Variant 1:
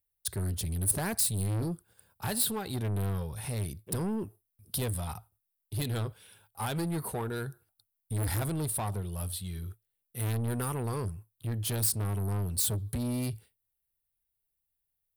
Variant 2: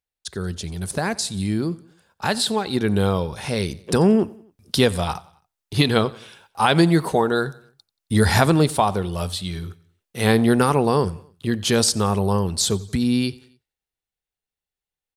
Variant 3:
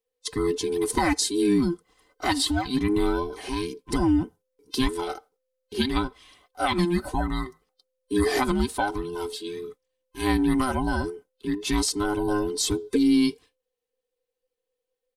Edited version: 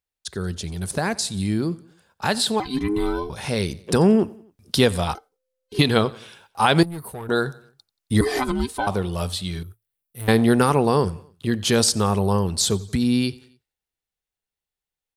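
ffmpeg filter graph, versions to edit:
-filter_complex "[2:a]asplit=3[a][b][c];[0:a]asplit=2[d][e];[1:a]asplit=6[f][g][h][i][j][k];[f]atrim=end=2.602[l];[a]atrim=start=2.598:end=3.302[m];[g]atrim=start=3.298:end=5.152[n];[b]atrim=start=5.148:end=5.792[o];[h]atrim=start=5.788:end=6.832[p];[d]atrim=start=6.828:end=7.292[q];[i]atrim=start=7.288:end=8.212[r];[c]atrim=start=8.208:end=8.872[s];[j]atrim=start=8.868:end=9.632[t];[e]atrim=start=9.628:end=10.282[u];[k]atrim=start=10.278[v];[l][m]acrossfade=d=0.004:c1=hsin:c2=hsin[w];[w][n]acrossfade=d=0.004:c1=hsin:c2=hsin[x];[x][o]acrossfade=d=0.004:c1=hsin:c2=hsin[y];[y][p]acrossfade=d=0.004:c1=hsin:c2=hsin[z];[z][q]acrossfade=d=0.004:c1=hsin:c2=hsin[aa];[aa][r]acrossfade=d=0.004:c1=hsin:c2=hsin[ab];[ab][s]acrossfade=d=0.004:c1=hsin:c2=hsin[ac];[ac][t]acrossfade=d=0.004:c1=hsin:c2=hsin[ad];[ad][u]acrossfade=d=0.004:c1=hsin:c2=hsin[ae];[ae][v]acrossfade=d=0.004:c1=hsin:c2=hsin"

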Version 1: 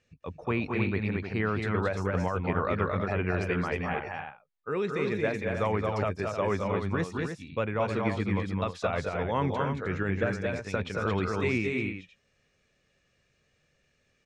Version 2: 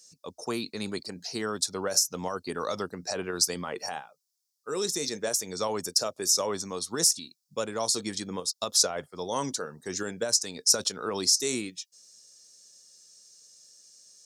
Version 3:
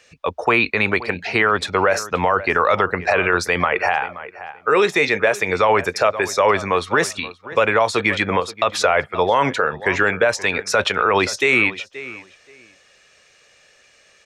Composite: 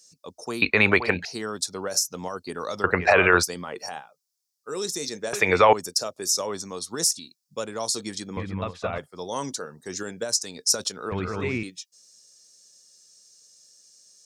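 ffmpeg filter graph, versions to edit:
-filter_complex "[2:a]asplit=3[a][b][c];[0:a]asplit=2[d][e];[1:a]asplit=6[f][g][h][i][j][k];[f]atrim=end=0.622[l];[a]atrim=start=0.618:end=1.252[m];[g]atrim=start=1.248:end=2.842[n];[b]atrim=start=2.838:end=3.432[o];[h]atrim=start=3.428:end=5.332[p];[c]atrim=start=5.328:end=5.732[q];[i]atrim=start=5.728:end=8.372[r];[d]atrim=start=8.368:end=8.982[s];[j]atrim=start=8.978:end=11.122[t];[e]atrim=start=11.118:end=11.632[u];[k]atrim=start=11.628[v];[l][m]acrossfade=d=0.004:c1=hsin:c2=hsin[w];[w][n]acrossfade=d=0.004:c1=hsin:c2=hsin[x];[x][o]acrossfade=d=0.004:c1=hsin:c2=hsin[y];[y][p]acrossfade=d=0.004:c1=hsin:c2=hsin[z];[z][q]acrossfade=d=0.004:c1=hsin:c2=hsin[aa];[aa][r]acrossfade=d=0.004:c1=hsin:c2=hsin[ab];[ab][s]acrossfade=d=0.004:c1=hsin:c2=hsin[ac];[ac][t]acrossfade=d=0.004:c1=hsin:c2=hsin[ad];[ad][u]acrossfade=d=0.004:c1=hsin:c2=hsin[ae];[ae][v]acrossfade=d=0.004:c1=hsin:c2=hsin"

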